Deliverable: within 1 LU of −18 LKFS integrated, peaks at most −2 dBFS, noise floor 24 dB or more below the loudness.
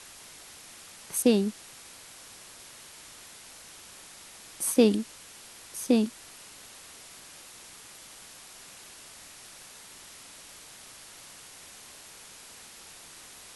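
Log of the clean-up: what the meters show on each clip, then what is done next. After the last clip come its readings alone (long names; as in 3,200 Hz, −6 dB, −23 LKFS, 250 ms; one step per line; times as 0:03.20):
background noise floor −49 dBFS; target noise floor −51 dBFS; integrated loudness −26.5 LKFS; sample peak −9.0 dBFS; target loudness −18.0 LKFS
→ broadband denoise 6 dB, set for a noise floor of −49 dBFS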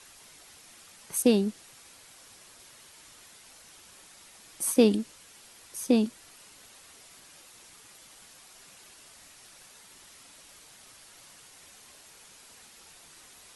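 background noise floor −54 dBFS; integrated loudness −26.5 LKFS; sample peak −9.0 dBFS; target loudness −18.0 LKFS
→ level +8.5 dB
brickwall limiter −2 dBFS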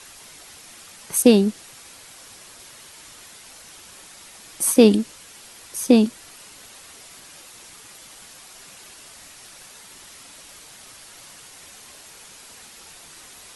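integrated loudness −18.5 LKFS; sample peak −2.0 dBFS; background noise floor −45 dBFS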